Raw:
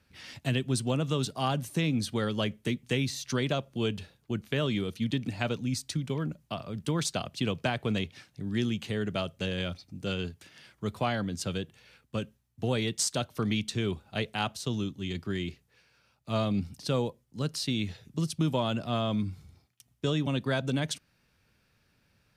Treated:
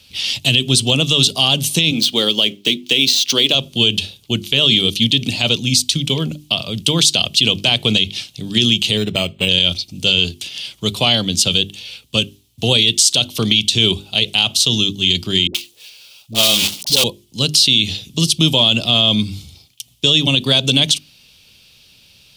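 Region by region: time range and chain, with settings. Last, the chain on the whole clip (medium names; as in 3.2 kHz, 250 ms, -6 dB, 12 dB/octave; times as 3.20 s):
1.91–3.55 s: median filter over 5 samples + Chebyshev high-pass 280 Hz
8.97–9.49 s: block-companded coder 7-bit + decimation joined by straight lines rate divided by 8×
15.47–17.04 s: block-companded coder 3-bit + tone controls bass -11 dB, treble +1 dB + phase dispersion highs, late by 76 ms, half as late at 380 Hz
whole clip: resonant high shelf 2.3 kHz +11 dB, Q 3; hum notches 50/100/150/200/250/300/350/400 Hz; loudness maximiser +13.5 dB; trim -1 dB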